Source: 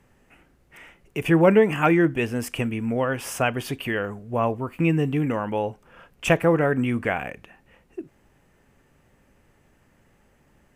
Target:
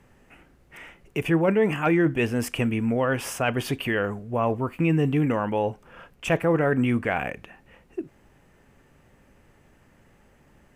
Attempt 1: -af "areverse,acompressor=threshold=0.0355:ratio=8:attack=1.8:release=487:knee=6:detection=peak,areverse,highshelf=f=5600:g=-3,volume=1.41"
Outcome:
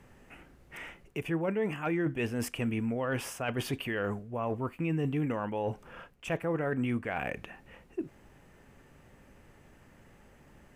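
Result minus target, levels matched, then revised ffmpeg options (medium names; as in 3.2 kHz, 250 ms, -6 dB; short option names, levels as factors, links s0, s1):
compression: peak gain reduction +10 dB
-af "areverse,acompressor=threshold=0.133:ratio=8:attack=1.8:release=487:knee=6:detection=peak,areverse,highshelf=f=5600:g=-3,volume=1.41"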